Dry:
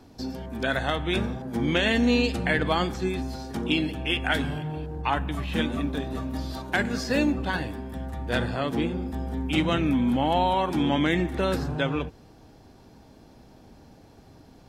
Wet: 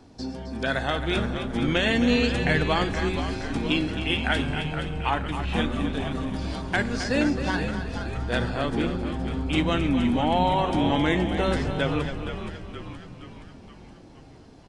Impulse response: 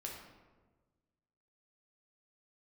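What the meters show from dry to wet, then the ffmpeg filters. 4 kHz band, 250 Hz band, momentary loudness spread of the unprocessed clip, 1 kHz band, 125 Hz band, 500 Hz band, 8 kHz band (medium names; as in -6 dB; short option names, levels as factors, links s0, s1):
+1.0 dB, +0.5 dB, 10 LU, +1.0 dB, +2.0 dB, +1.0 dB, +1.0 dB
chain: -filter_complex "[0:a]asplit=2[s0][s1];[s1]aecho=0:1:266:0.316[s2];[s0][s2]amix=inputs=2:normalize=0,aresample=22050,aresample=44100,asplit=2[s3][s4];[s4]asplit=7[s5][s6][s7][s8][s9][s10][s11];[s5]adelay=471,afreqshift=-86,volume=0.355[s12];[s6]adelay=942,afreqshift=-172,volume=0.2[s13];[s7]adelay=1413,afreqshift=-258,volume=0.111[s14];[s8]adelay=1884,afreqshift=-344,volume=0.0624[s15];[s9]adelay=2355,afreqshift=-430,volume=0.0351[s16];[s10]adelay=2826,afreqshift=-516,volume=0.0195[s17];[s11]adelay=3297,afreqshift=-602,volume=0.011[s18];[s12][s13][s14][s15][s16][s17][s18]amix=inputs=7:normalize=0[s19];[s3][s19]amix=inputs=2:normalize=0"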